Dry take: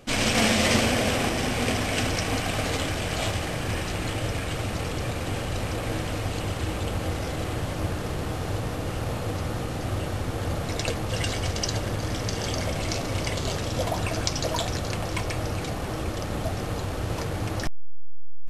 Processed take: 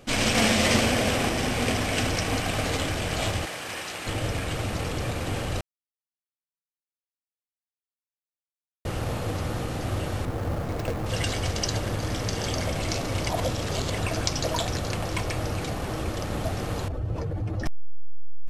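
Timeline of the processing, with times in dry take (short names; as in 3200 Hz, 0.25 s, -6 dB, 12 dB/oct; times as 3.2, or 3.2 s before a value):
3.45–4.07 HPF 870 Hz 6 dB/oct
5.61–8.85 mute
10.25–11.06 median filter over 15 samples
13.29–13.98 reverse
16.88–17.66 spectral contrast raised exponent 1.7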